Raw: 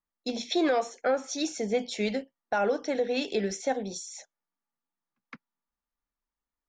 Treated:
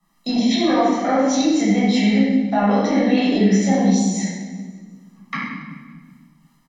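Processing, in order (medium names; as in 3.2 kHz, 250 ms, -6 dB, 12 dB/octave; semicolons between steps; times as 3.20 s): low-pass that closes with the level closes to 2.9 kHz, closed at -25.5 dBFS; resonant low shelf 120 Hz -12 dB, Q 3; comb 1 ms, depth 65%; peak limiter -25.5 dBFS, peak gain reduction 10 dB; harmonic tremolo 2.7 Hz, depth 50%, crossover 850 Hz; on a send: thinning echo 185 ms, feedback 37%, level -21 dB; on the sum: simulated room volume 700 m³, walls mixed, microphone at 6.5 m; three bands compressed up and down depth 40%; trim +5 dB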